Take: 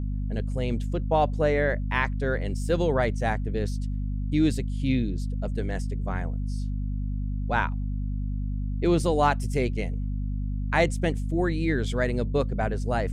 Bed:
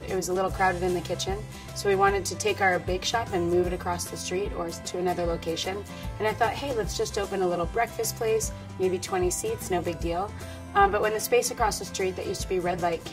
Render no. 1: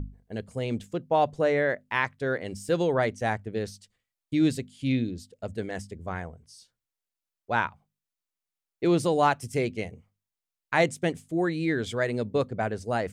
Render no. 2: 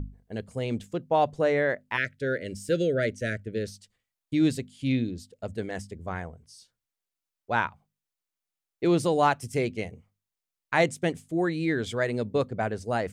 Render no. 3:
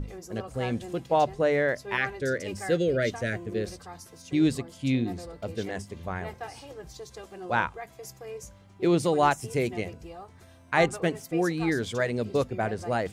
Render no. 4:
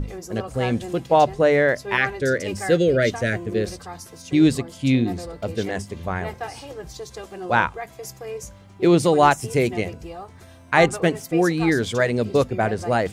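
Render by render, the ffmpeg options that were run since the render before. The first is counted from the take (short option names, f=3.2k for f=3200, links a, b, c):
-af "bandreject=f=50:t=h:w=6,bandreject=f=100:t=h:w=6,bandreject=f=150:t=h:w=6,bandreject=f=200:t=h:w=6,bandreject=f=250:t=h:w=6"
-filter_complex "[0:a]asplit=3[a][b][c];[a]afade=t=out:st=1.96:d=0.02[d];[b]asuperstop=centerf=930:order=12:qfactor=1.3,afade=t=in:st=1.96:d=0.02,afade=t=out:st=3.66:d=0.02[e];[c]afade=t=in:st=3.66:d=0.02[f];[d][e][f]amix=inputs=3:normalize=0"
-filter_complex "[1:a]volume=-14.5dB[a];[0:a][a]amix=inputs=2:normalize=0"
-af "volume=7dB,alimiter=limit=-3dB:level=0:latency=1"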